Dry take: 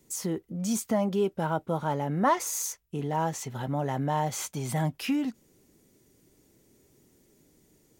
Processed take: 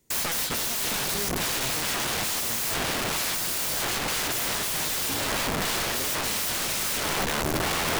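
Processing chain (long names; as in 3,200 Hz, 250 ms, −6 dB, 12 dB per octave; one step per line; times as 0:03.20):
parametric band 270 Hz −5.5 dB 2.5 octaves
delay with pitch and tempo change per echo 176 ms, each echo −5 semitones, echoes 3
leveller curve on the samples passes 3
dynamic equaliser 1,300 Hz, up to +6 dB, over −40 dBFS, Q 2
wrap-around overflow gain 25.5 dB
speech leveller
level +3 dB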